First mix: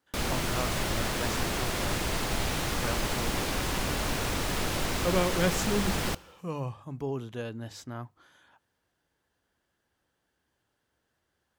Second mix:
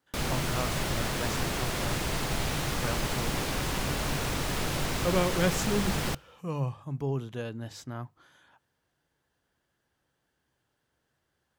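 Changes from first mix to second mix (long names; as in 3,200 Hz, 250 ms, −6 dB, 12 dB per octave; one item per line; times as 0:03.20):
background: send −9.0 dB
master: add parametric band 140 Hz +7.5 dB 0.24 octaves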